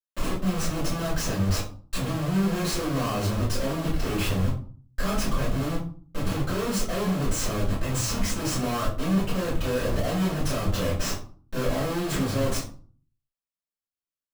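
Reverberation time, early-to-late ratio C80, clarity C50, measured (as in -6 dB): 0.45 s, 11.5 dB, 6.0 dB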